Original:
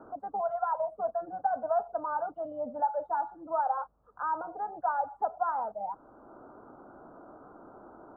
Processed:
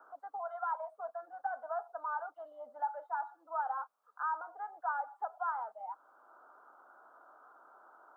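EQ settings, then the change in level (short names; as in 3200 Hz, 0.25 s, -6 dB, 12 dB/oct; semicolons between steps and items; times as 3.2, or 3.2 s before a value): HPF 1500 Hz 12 dB/oct; +3.5 dB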